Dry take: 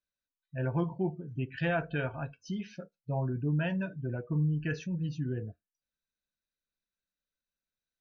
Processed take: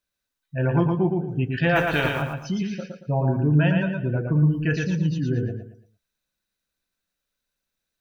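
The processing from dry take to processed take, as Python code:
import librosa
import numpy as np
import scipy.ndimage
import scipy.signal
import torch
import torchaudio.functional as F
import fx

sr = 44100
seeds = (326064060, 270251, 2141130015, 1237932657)

y = fx.spec_flatten(x, sr, power=0.54, at=(1.75, 2.21), fade=0.02)
y = fx.echo_feedback(y, sr, ms=114, feedback_pct=32, wet_db=-4)
y = y * 10.0 ** (9.0 / 20.0)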